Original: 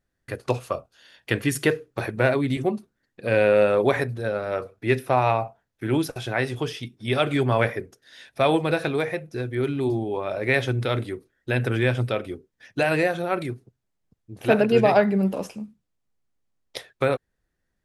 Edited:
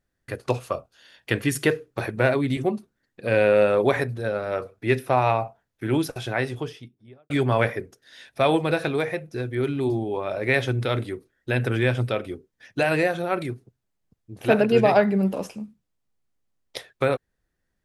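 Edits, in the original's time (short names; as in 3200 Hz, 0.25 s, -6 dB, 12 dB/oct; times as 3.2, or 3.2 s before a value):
6.26–7.3 studio fade out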